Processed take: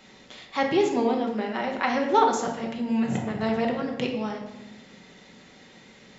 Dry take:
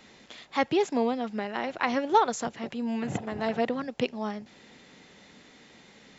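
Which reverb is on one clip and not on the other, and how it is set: shoebox room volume 400 m³, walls mixed, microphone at 1.1 m

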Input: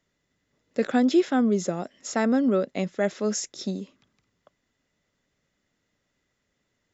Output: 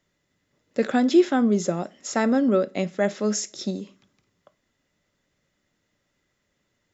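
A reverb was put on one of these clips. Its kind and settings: two-slope reverb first 0.28 s, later 1.6 s, from -27 dB, DRR 12 dB; gain +2 dB

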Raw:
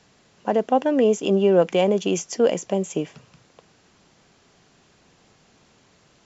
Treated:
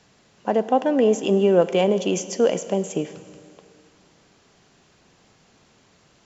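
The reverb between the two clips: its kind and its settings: Schroeder reverb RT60 2.4 s, combs from 33 ms, DRR 13.5 dB

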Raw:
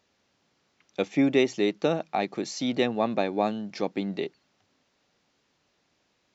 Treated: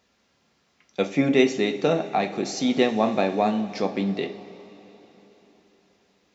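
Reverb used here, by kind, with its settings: two-slope reverb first 0.32 s, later 4 s, from -18 dB, DRR 3.5 dB; gain +2.5 dB

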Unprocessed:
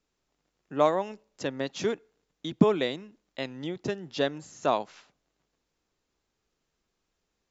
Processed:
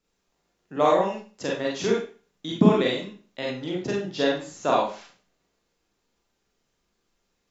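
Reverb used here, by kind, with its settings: Schroeder reverb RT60 0.37 s, combs from 32 ms, DRR -3.5 dB

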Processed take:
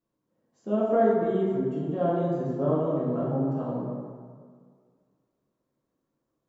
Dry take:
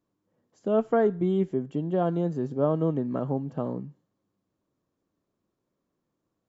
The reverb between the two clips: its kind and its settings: plate-style reverb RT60 1.9 s, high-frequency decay 0.5×, DRR -7.5 dB; gain -8.5 dB

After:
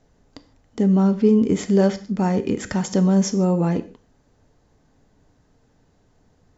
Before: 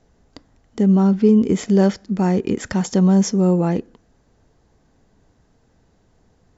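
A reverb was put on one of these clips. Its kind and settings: non-linear reverb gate 0.18 s falling, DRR 10 dB; gain -1.5 dB

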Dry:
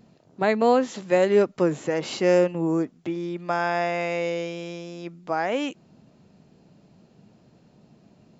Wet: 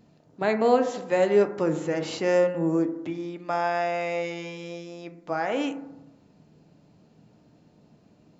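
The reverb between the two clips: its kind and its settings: FDN reverb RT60 0.94 s, low-frequency decay 1.05×, high-frequency decay 0.25×, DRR 6.5 dB; gain -3 dB

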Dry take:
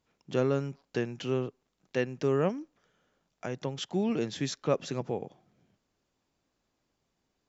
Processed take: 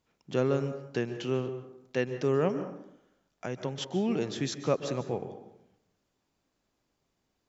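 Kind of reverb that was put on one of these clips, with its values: plate-style reverb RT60 0.77 s, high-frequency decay 0.55×, pre-delay 0.12 s, DRR 10.5 dB

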